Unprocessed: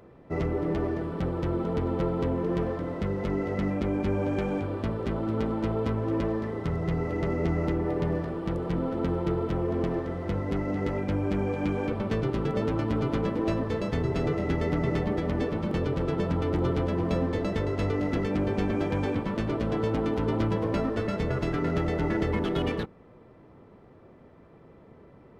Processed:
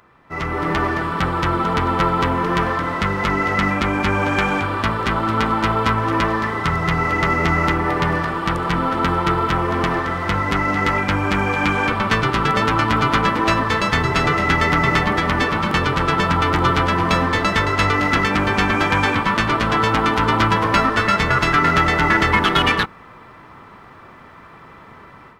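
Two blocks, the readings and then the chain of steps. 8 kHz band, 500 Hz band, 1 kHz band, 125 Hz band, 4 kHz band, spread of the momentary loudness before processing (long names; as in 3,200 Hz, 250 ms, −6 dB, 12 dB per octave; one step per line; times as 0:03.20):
can't be measured, +5.0 dB, +19.0 dB, +6.5 dB, +20.0 dB, 3 LU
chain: low shelf with overshoot 770 Hz −12.5 dB, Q 1.5
automatic gain control gain up to 12 dB
level +7.5 dB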